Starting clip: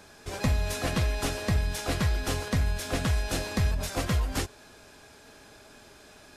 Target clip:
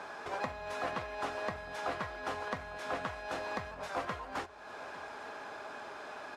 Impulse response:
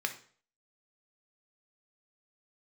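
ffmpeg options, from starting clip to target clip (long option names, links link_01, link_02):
-af "acompressor=threshold=-46dB:ratio=2.5,bandpass=frequency=990:width_type=q:width=1.3:csg=0,aecho=1:1:854:0.133,volume=13.5dB"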